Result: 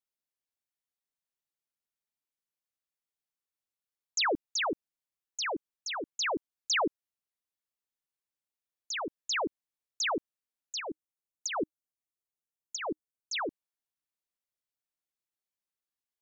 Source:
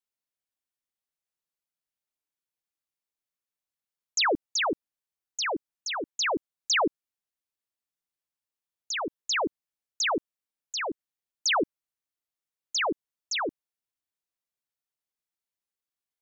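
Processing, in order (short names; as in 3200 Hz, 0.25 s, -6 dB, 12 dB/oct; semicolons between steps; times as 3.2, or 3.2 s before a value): 10.8–13.33 EQ curve 310 Hz 0 dB, 4400 Hz -11 dB, 6600 Hz -1 dB; gain -4 dB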